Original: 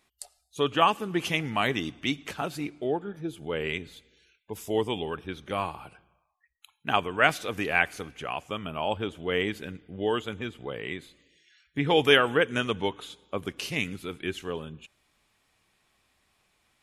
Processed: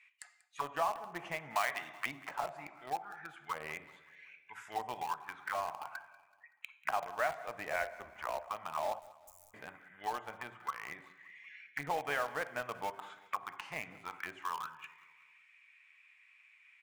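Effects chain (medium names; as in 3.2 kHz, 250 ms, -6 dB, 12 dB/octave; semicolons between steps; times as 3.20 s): graphic EQ 125/250/500/1000/2000/4000/8000 Hz +10/-5/-11/+8/+12/-4/+10 dB; auto-wah 630–2500 Hz, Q 5.4, down, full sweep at -24.5 dBFS; on a send at -9.5 dB: reverberation RT60 0.70 s, pre-delay 3 ms; on the sum: compression 2:1, threshold -47 dBFS, peak gain reduction 12.5 dB; in parallel at -8 dB: bit crusher 7-bit; 1.55–2.06 s: on the sum: tilt shelf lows -9 dB, about 650 Hz; 8.99–9.54 s: inverse Chebyshev band-stop 140–3700 Hz, stop band 40 dB; feedback delay 189 ms, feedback 49%, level -20 dB; 7.73–8.48 s: frequency shift -77 Hz; trim +5 dB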